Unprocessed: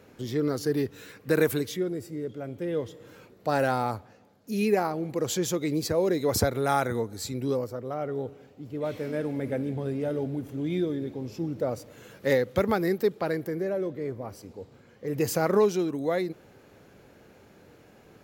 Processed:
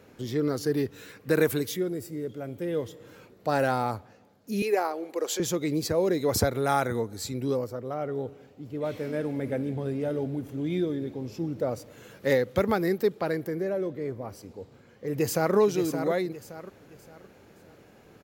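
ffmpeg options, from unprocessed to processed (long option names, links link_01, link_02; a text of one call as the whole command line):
ffmpeg -i in.wav -filter_complex "[0:a]asettb=1/sr,asplit=3[link_01][link_02][link_03];[link_01]atrim=end=1.614[link_04];[link_02]atrim=start=1.61:end=2.95,asetpts=PTS-STARTPTS,afade=type=in:duration=0.004:curve=qsin,afade=type=out:start_time=1.336:duration=0.004:curve=qsin,highshelf=frequency=10000:gain=11[link_05];[link_03]atrim=start=2.946[link_06];[link_04][link_05]acrossfade=duration=0.004:curve1=hsin:curve2=qsin[link_07];[link_07][link_06]acrossfade=duration=0.004:curve1=qsin:curve2=hsin,asettb=1/sr,asplit=3[link_08][link_09][link_10];[link_08]atrim=end=4.624[link_11];[link_09]atrim=start=4.62:end=5.4,asetpts=PTS-STARTPTS,afade=type=in:duration=0.004:curve=qsin,afade=type=out:start_time=0.776:duration=0.004:curve=qsin,highpass=frequency=350:width=0.5412,highpass=frequency=350:width=1.3066[link_12];[link_10]atrim=start=5.396[link_13];[link_11][link_12]acrossfade=duration=0.004:curve1=hsin:curve2=qsin[link_14];[link_14][link_13]acrossfade=duration=0.004:curve1=qsin:curve2=hsin,asplit=2[link_15][link_16];[link_16]afade=type=in:start_time=15.1:duration=0.01,afade=type=out:start_time=15.55:duration=0.01,aecho=0:1:570|1140|1710|2280:0.398107|0.139338|0.0487681|0.0170688[link_17];[link_15][link_17]amix=inputs=2:normalize=0" out.wav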